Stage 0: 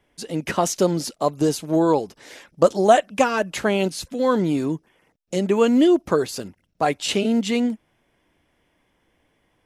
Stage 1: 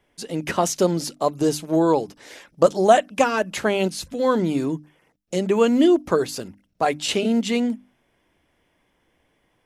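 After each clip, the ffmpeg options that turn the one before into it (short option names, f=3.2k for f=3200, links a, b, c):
-af "bandreject=f=50:t=h:w=6,bandreject=f=100:t=h:w=6,bandreject=f=150:t=h:w=6,bandreject=f=200:t=h:w=6,bandreject=f=250:t=h:w=6,bandreject=f=300:t=h:w=6"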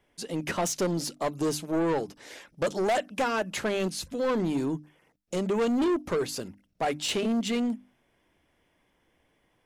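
-af "asoftclip=type=tanh:threshold=-19dB,volume=-3dB"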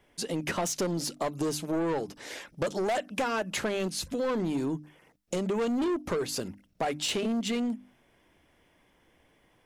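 -af "acompressor=threshold=-34dB:ratio=3,volume=4.5dB"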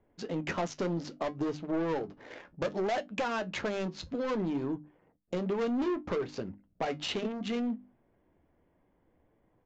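-af "adynamicsmooth=sensitivity=5.5:basefreq=1k,aresample=16000,aresample=44100,flanger=delay=9.1:depth=3:regen=-60:speed=0.64:shape=triangular,volume=2dB"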